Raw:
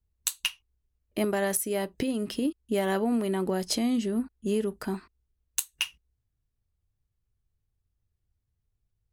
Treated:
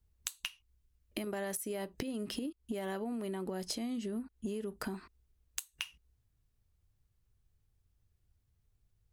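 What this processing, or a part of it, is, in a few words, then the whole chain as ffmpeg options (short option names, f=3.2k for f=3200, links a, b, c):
serial compression, peaks first: -filter_complex "[0:a]asettb=1/sr,asplit=3[a][b][c];[a]atrim=end=0.484[d];[b]atrim=start=0.48:end=1.27,asetpts=PTS-STARTPTS,afade=t=in:d=0.004:c=qsin,afade=t=out:st=0.786:d=0.004:c=qsin,equalizer=f=600:t=o:w=2.2:g=-5[e];[c]atrim=start=1.266[f];[d][e]acrossfade=d=0.004:c1=hsin:c2=qsin[g];[g][f]acrossfade=d=0.004:c1=qsin:c2=hsin,acompressor=threshold=-35dB:ratio=6,acompressor=threshold=-40dB:ratio=3,volume=4dB"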